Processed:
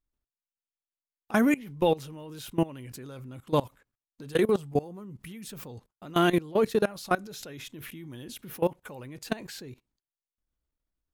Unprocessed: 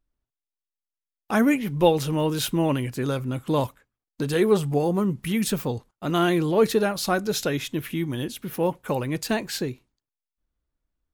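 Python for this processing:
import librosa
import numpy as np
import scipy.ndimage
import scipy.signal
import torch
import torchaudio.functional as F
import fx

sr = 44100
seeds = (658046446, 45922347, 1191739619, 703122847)

y = fx.level_steps(x, sr, step_db=21)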